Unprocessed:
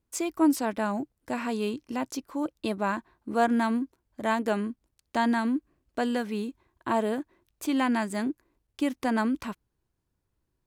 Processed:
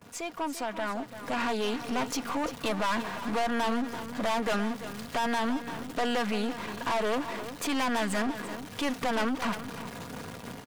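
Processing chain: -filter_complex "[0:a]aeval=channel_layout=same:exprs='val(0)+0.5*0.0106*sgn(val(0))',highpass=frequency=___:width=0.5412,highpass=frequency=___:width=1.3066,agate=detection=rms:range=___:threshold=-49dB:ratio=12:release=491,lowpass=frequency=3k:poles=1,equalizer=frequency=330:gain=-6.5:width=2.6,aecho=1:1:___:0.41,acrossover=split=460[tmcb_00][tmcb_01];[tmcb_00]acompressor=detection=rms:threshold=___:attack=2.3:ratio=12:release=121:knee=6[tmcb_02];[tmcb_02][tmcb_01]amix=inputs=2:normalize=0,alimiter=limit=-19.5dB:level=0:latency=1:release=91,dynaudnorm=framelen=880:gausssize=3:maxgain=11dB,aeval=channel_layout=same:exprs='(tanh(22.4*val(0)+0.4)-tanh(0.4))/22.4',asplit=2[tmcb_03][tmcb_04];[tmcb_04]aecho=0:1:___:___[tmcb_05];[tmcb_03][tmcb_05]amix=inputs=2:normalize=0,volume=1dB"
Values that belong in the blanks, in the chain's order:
110, 110, -13dB, 4.2, -38dB, 342, 0.251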